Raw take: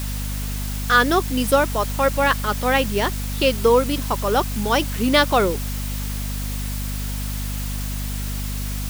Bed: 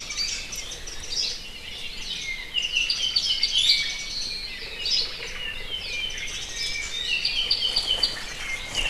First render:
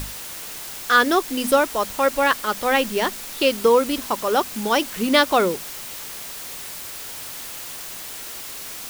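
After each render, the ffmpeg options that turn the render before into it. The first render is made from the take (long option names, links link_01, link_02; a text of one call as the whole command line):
ffmpeg -i in.wav -af "bandreject=frequency=50:width_type=h:width=6,bandreject=frequency=100:width_type=h:width=6,bandreject=frequency=150:width_type=h:width=6,bandreject=frequency=200:width_type=h:width=6,bandreject=frequency=250:width_type=h:width=6" out.wav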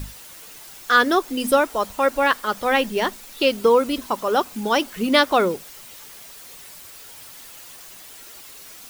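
ffmpeg -i in.wav -af "afftdn=noise_reduction=9:noise_floor=-35" out.wav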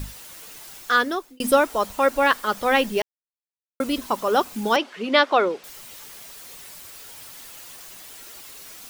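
ffmpeg -i in.wav -filter_complex "[0:a]asettb=1/sr,asplit=3[link_01][link_02][link_03];[link_01]atrim=end=4.764[link_04];[link_02]atrim=start=4.76:end=5.64,asetpts=PTS-STARTPTS,afade=type=in:duration=0.004:curve=qsin,afade=type=out:start_time=0.876:duration=0.004:curve=qsin,highpass=350,lowpass=3900[link_05];[link_03]atrim=start=5.636[link_06];[link_04][link_05]acrossfade=duration=0.004:curve1=hsin:curve2=qsin[link_07];[link_07][link_06]acrossfade=duration=0.004:curve1=qsin:curve2=hsin,asplit=4[link_08][link_09][link_10][link_11];[link_08]atrim=end=1.4,asetpts=PTS-STARTPTS,afade=type=out:start_time=0.76:duration=0.64[link_12];[link_09]atrim=start=1.4:end=3.02,asetpts=PTS-STARTPTS,afade=type=in:duration=0.004:curve=hsin,afade=type=out:start_time=1.616:duration=0.004:curve=hsin[link_13];[link_10]atrim=start=3.02:end=3.8,asetpts=PTS-STARTPTS,volume=0[link_14];[link_11]atrim=start=3.8,asetpts=PTS-STARTPTS,afade=type=in:duration=0.004:curve=hsin[link_15];[link_12][link_13][link_14][link_15]concat=n=4:v=0:a=1" out.wav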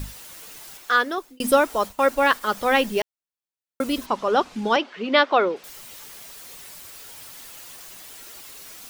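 ffmpeg -i in.wav -filter_complex "[0:a]asettb=1/sr,asplit=3[link_01][link_02][link_03];[link_01]atrim=end=0.774[link_04];[link_02]atrim=start=0.77:end=1.18,asetpts=PTS-STARTPTS,afade=type=in:duration=0.004:curve=qsin,afade=type=out:start_time=0.406:duration=0.004:curve=qsin,bass=frequency=250:gain=-10,treble=frequency=4000:gain=-4[link_05];[link_03]atrim=start=1.176[link_06];[link_04][link_05]acrossfade=duration=0.004:curve1=hsin:curve2=qsin[link_07];[link_07][link_06]acrossfade=duration=0.004:curve1=qsin:curve2=hsin,asplit=3[link_08][link_09][link_10];[link_08]afade=type=out:start_time=1.84:duration=0.02[link_11];[link_09]agate=range=-33dB:threshold=-33dB:ratio=3:release=100:detection=peak,afade=type=in:start_time=1.84:duration=0.02,afade=type=out:start_time=2.4:duration=0.02[link_12];[link_10]afade=type=in:start_time=2.4:duration=0.02[link_13];[link_11][link_12][link_13]amix=inputs=3:normalize=0,asplit=3[link_14][link_15][link_16];[link_14]afade=type=out:start_time=4.05:duration=0.02[link_17];[link_15]lowpass=4900,afade=type=in:start_time=4.05:duration=0.02,afade=type=out:start_time=5.55:duration=0.02[link_18];[link_16]afade=type=in:start_time=5.55:duration=0.02[link_19];[link_17][link_18][link_19]amix=inputs=3:normalize=0" out.wav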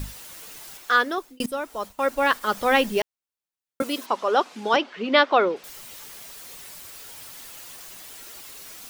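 ffmpeg -i in.wav -filter_complex "[0:a]asettb=1/sr,asplit=3[link_01][link_02][link_03];[link_01]atrim=end=3.824[link_04];[link_02]atrim=start=3.82:end=4.74,asetpts=PTS-STARTPTS,afade=type=in:duration=0.004:curve=qsin,afade=type=out:start_time=0.916:duration=0.004:curve=qsin,highpass=340[link_05];[link_03]atrim=start=4.736[link_06];[link_04][link_05]acrossfade=duration=0.004:curve1=hsin:curve2=qsin[link_07];[link_07][link_06]acrossfade=duration=0.004:curve1=qsin:curve2=hsin,asplit=2[link_08][link_09];[link_08]atrim=end=1.46,asetpts=PTS-STARTPTS,afade=type=out:start_time=1.456:duration=0.004:curve=hsin:silence=0.149624[link_10];[link_09]atrim=start=1.46,asetpts=PTS-STARTPTS,afade=type=in:duration=1.09:silence=0.149624[link_11];[link_10][link_11]concat=n=2:v=0:a=1" out.wav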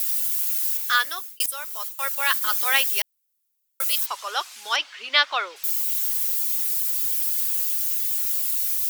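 ffmpeg -i in.wav -af "highpass=1300,aemphasis=mode=production:type=75fm" out.wav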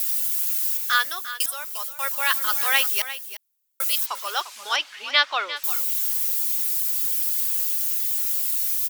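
ffmpeg -i in.wav -af "aecho=1:1:349:0.224" out.wav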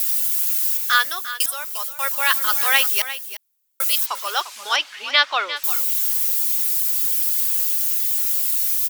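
ffmpeg -i in.wav -af "volume=3.5dB,alimiter=limit=-2dB:level=0:latency=1" out.wav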